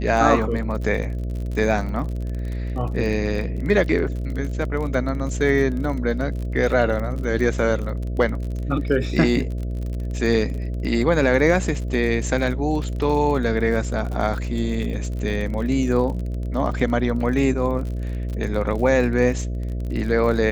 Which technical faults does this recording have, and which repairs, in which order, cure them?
mains buzz 60 Hz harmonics 11 −26 dBFS
surface crackle 40 per second −29 dBFS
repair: click removal
hum removal 60 Hz, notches 11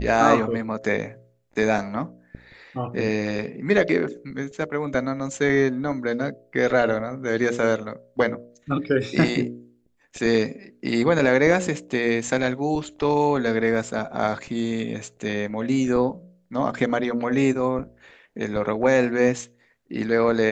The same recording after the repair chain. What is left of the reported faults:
none of them is left

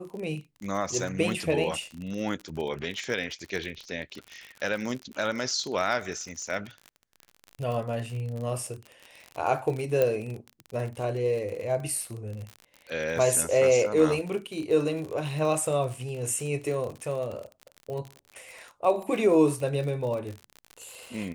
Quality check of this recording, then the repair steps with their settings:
surface crackle 46 per second −33 dBFS
0:10.02: click −12 dBFS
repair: click removal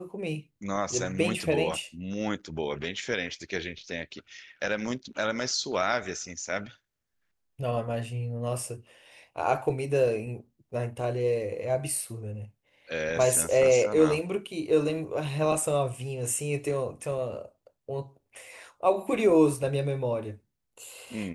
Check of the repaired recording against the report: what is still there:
0:10.02: click

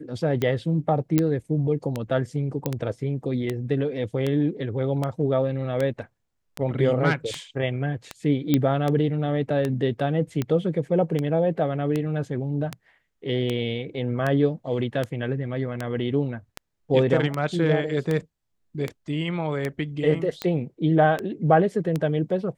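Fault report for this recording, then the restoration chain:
scratch tick 78 rpm −13 dBFS
0:01.18: click −8 dBFS
0:02.66: click −11 dBFS
0:08.54: click −7 dBFS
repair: click removal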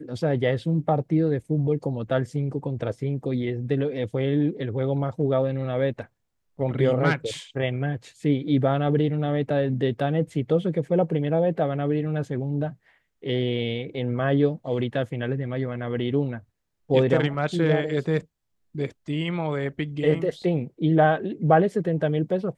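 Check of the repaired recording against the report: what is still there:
0:02.66: click

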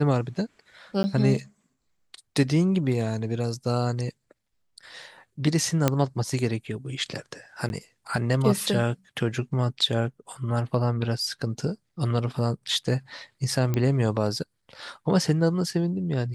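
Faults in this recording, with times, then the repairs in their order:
0:01.03–0:01.04: drop-out 10 ms
0:05.88: click −6 dBFS
0:07.69–0:07.70: drop-out 11 ms
0:13.74: click −13 dBFS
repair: click removal
repair the gap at 0:01.03, 10 ms
repair the gap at 0:07.69, 11 ms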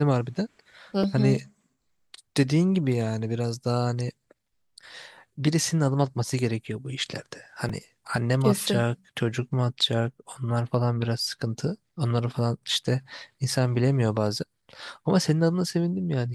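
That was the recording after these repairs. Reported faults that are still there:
none of them is left

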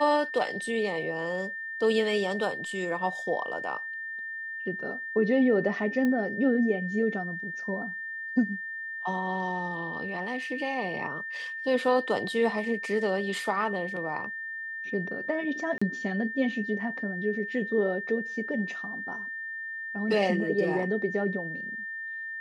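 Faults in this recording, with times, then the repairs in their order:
whistle 1,800 Hz −34 dBFS
0:06.05: click −18 dBFS
0:15.78–0:15.81: drop-out 35 ms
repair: click removal
notch filter 1,800 Hz, Q 30
repair the gap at 0:15.78, 35 ms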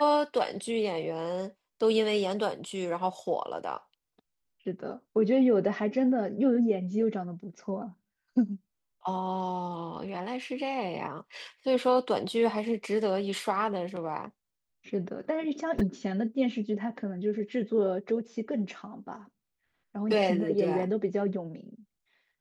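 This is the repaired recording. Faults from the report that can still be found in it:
none of them is left

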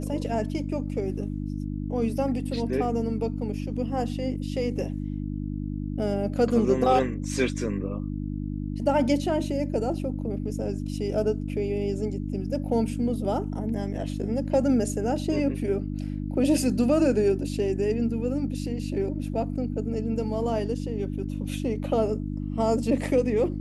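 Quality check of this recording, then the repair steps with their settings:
mains hum 50 Hz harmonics 6 −31 dBFS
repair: hum removal 50 Hz, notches 6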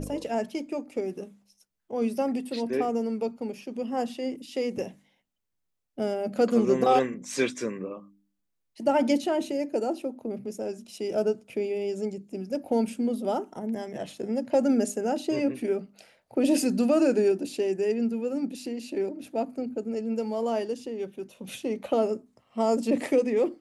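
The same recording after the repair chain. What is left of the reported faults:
none of them is left

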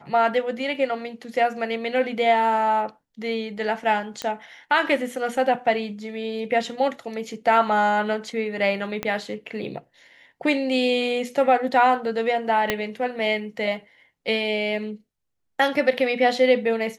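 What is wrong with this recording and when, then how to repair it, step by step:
0:04.22: click −14 dBFS
0:09.03: click −11 dBFS
0:12.70: click −6 dBFS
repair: click removal

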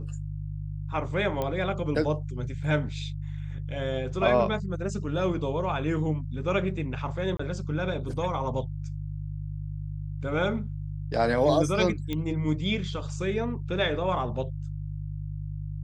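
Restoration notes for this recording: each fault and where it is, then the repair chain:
mains hum 50 Hz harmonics 3 −34 dBFS
0:01.42: click −17 dBFS
0:07.37–0:07.39: drop-out 24 ms
0:12.13: click −18 dBFS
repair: click removal
hum removal 50 Hz, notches 3
repair the gap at 0:07.37, 24 ms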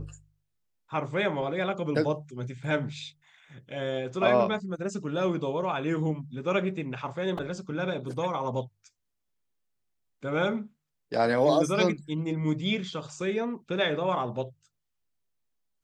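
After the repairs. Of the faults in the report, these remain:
none of them is left

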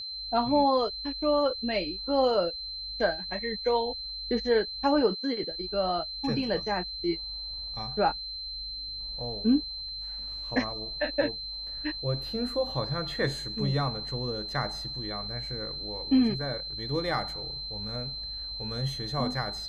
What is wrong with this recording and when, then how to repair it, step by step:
whistle 4,100 Hz −35 dBFS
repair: notch filter 4,100 Hz, Q 30

